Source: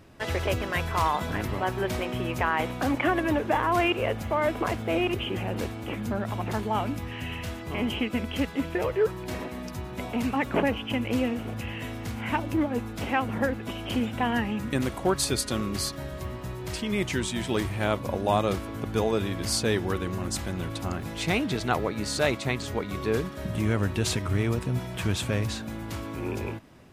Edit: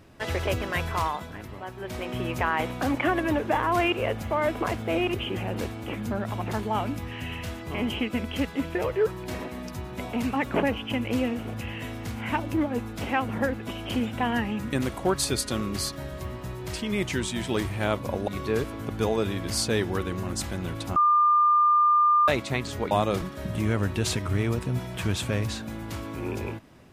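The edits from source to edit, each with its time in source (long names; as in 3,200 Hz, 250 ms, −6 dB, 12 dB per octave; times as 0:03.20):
0:00.89–0:02.20: duck −10 dB, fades 0.41 s
0:18.28–0:18.59: swap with 0:22.86–0:23.22
0:20.91–0:22.23: beep over 1,200 Hz −16.5 dBFS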